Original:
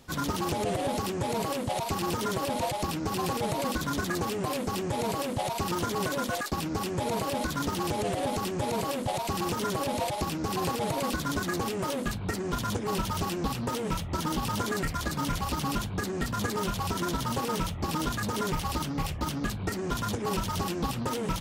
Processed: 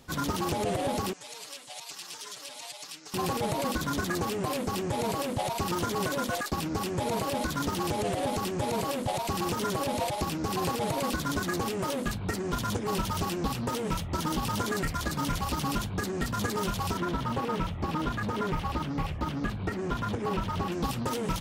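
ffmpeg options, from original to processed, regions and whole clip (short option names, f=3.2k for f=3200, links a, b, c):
-filter_complex "[0:a]asettb=1/sr,asplit=3[a][b][c];[a]atrim=end=1.134[d];[b]atrim=start=1.13:end=3.14,asetpts=PTS-STARTPTS,afade=t=in:d=0.004:c=qsin,afade=t=out:st=2.006:d=0.004:c=qsin,lowpass=6.5k,aderivative,aecho=1:1:6.8:1,atrim=end_sample=88641[e];[c]atrim=start=3.136[f];[d][e]acrossfade=d=0.004:c1=hsin:c2=qsin[g];[g][f]acrossfade=d=0.004:c1=qsin:c2=hsin,asettb=1/sr,asplit=3[h][i][j];[h]atrim=end=16.974[k];[i]atrim=start=16.97:end=20.72,asetpts=PTS-STARTPTS,afade=t=in:d=0.004:c=qsin,afade=t=out:st=3.746:d=0.004:c=qsin,acrossover=split=3400[l][m];[m]acompressor=threshold=-54dB:ratio=4:attack=1:release=60[n];[l][n]amix=inputs=2:normalize=0,asoftclip=type=hard:threshold=-21dB[o];[j]atrim=start=20.716[p];[k][o]acrossfade=d=0.004:c1=hsin:c2=qsin[q];[q][p]acrossfade=d=0.004:c1=qsin:c2=hsin"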